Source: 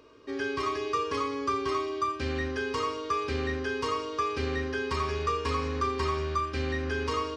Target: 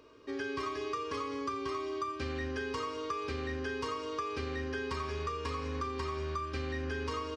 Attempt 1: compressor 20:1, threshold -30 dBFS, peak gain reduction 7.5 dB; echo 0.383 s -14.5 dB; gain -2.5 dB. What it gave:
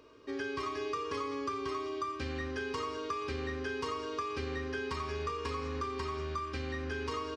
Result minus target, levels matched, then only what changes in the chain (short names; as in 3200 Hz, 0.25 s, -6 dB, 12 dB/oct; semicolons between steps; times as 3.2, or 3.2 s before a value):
echo 0.177 s late
change: echo 0.206 s -14.5 dB